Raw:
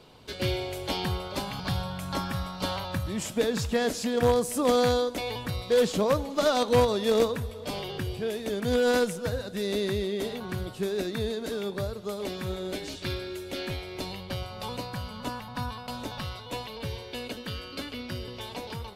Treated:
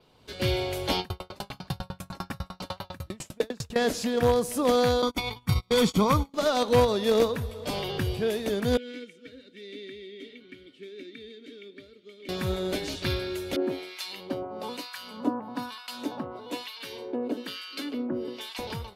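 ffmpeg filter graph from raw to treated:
-filter_complex "[0:a]asettb=1/sr,asplit=3[s0][s1][s2];[s0]atrim=end=1.004[s3];[s1]atrim=start=1:end=3.76,asetpts=PTS-STARTPTS,afade=t=in:d=0.004:c=qsin,afade=t=out:st=2.756:d=0.004:c=qsin,bandreject=f=3300:w=19,aeval=exprs='val(0)*pow(10,-38*if(lt(mod(10*n/s,1),2*abs(10)/1000),1-mod(10*n/s,1)/(2*abs(10)/1000),(mod(10*n/s,1)-2*abs(10)/1000)/(1-2*abs(10)/1000))/20)':c=same[s4];[s2]atrim=start=3.756[s5];[s3][s4]acrossfade=d=0.004:c1=hsin:c2=qsin[s6];[s6][s5]acrossfade=d=0.004:c1=qsin:c2=hsin,asettb=1/sr,asplit=3[s7][s8][s9];[s7]atrim=end=5.024[s10];[s8]atrim=start=5.02:end=6.34,asetpts=PTS-STARTPTS,afade=t=in:d=0.004:c=qsin,afade=t=out:st=1.316:d=0.004:c=qsin,agate=range=0.0251:threshold=0.0251:ratio=16:release=100:detection=peak,aecho=1:1:0.9:0.66,atrim=end_sample=58212,acontrast=39[s11];[s9]atrim=start=6.336[s12];[s10][s11]acrossfade=d=0.004:c1=hsin:c2=qsin[s13];[s13][s12]acrossfade=d=0.004:c1=qsin:c2=hsin,asettb=1/sr,asplit=3[s14][s15][s16];[s14]atrim=end=8.774[s17];[s15]atrim=start=8.77:end=12.29,asetpts=PTS-STARTPTS,afade=t=in:d=0.004:c=qsin,afade=t=out:st=3.516:d=0.004:c=qsin,asplit=3[s18][s19][s20];[s18]bandpass=f=270:t=q:w=8,volume=1[s21];[s19]bandpass=f=2290:t=q:w=8,volume=0.501[s22];[s20]bandpass=f=3010:t=q:w=8,volume=0.355[s23];[s21][s22][s23]amix=inputs=3:normalize=0,equalizer=f=110:w=0.69:g=-11.5,aecho=1:1:2.2:0.38,atrim=end_sample=155232[s24];[s16]atrim=start=12.286[s25];[s17][s24]acrossfade=d=0.004:c1=hsin:c2=qsin[s26];[s26][s25]acrossfade=d=0.004:c1=qsin:c2=hsin,asettb=1/sr,asplit=3[s27][s28][s29];[s27]atrim=end=13.564[s30];[s28]atrim=start=13.56:end=18.59,asetpts=PTS-STARTPTS,afade=t=in:d=0.004:c=qsin,afade=t=out:st=5.026:d=0.004:c=qsin,acrossover=split=1200[s31][s32];[s31]aeval=exprs='val(0)*(1-1/2+1/2*cos(2*PI*1.1*n/s))':c=same[s33];[s32]aeval=exprs='val(0)*(1-1/2-1/2*cos(2*PI*1.1*n/s))':c=same[s34];[s33][s34]amix=inputs=2:normalize=0,highpass=f=290:t=q:w=3.6[s35];[s29]atrim=start=18.586[s36];[s30][s35]acrossfade=d=0.004:c1=hsin:c2=qsin[s37];[s37][s36]acrossfade=d=0.004:c1=qsin:c2=hsin,dynaudnorm=f=150:g=5:m=3.98,adynamicequalizer=threshold=0.00398:dfrequency=7900:dqfactor=3.2:tfrequency=7900:tqfactor=3.2:attack=5:release=100:ratio=0.375:range=2.5:mode=cutabove:tftype=bell,volume=0.398"

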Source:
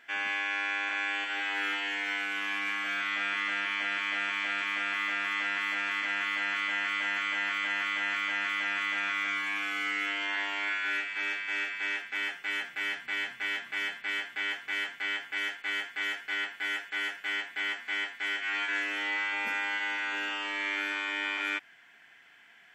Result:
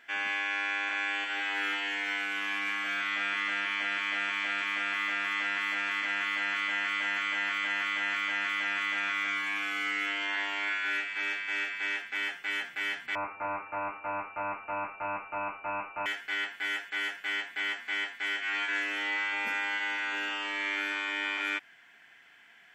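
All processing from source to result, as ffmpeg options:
-filter_complex "[0:a]asettb=1/sr,asplit=3[s0][s1][s2];[s0]atrim=end=13.154[s3];[s1]atrim=start=13.15:end=16.06,asetpts=PTS-STARTPTS,afade=t=in:d=0.004:c=qsin,afade=t=out:st=2.906:d=0.004:c=qsin,asubboost=boost=9.5:cutoff=250,aeval=exprs='val(0)+0.00398*sin(2*PI*550*n/s)':c=same,lowpass=f=2500:t=q:w=0.5098,lowpass=f=2500:t=q:w=0.6013,lowpass=f=2500:t=q:w=0.9,lowpass=f=2500:t=q:w=2.563,afreqshift=-2900[s4];[s2]atrim=start=16.056[s5];[s3][s4]acrossfade=d=0.004:c1=hsin:c2=qsin[s6];[s6][s5]acrossfade=d=0.004:c1=qsin:c2=hsin"

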